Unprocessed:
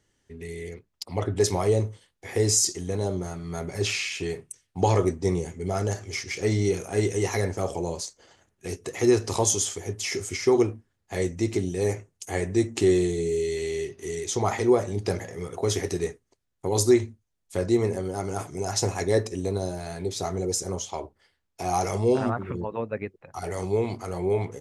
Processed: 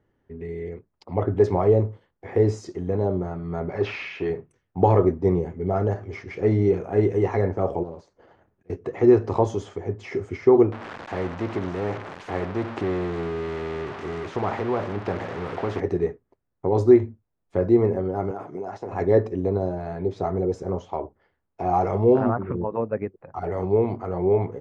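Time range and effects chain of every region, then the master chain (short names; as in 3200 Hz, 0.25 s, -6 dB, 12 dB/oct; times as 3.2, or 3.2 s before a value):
3.7–4.3 block floating point 7-bit + bell 7900 Hz -13.5 dB 0.36 oct + overdrive pedal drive 10 dB, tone 7400 Hz, clips at -14 dBFS
7.83–8.7 compressor 2:1, threshold -44 dBFS + auto swell 0.437 s + Doppler distortion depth 0.45 ms
10.72–15.8 switching spikes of -17.5 dBFS + tape spacing loss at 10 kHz 21 dB + spectral compressor 2:1
18.31–18.92 HPF 200 Hz + compressor 5:1, threshold -32 dBFS
whole clip: LPF 1200 Hz 12 dB/oct; low shelf 91 Hz -5 dB; gain +5 dB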